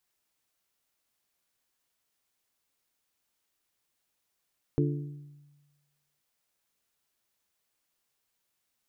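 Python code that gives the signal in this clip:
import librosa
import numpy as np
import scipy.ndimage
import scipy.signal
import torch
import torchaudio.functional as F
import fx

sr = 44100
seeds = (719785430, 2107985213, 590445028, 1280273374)

y = fx.strike_glass(sr, length_s=1.43, level_db=-23.5, body='bell', hz=145.0, decay_s=1.27, tilt_db=2, modes=4)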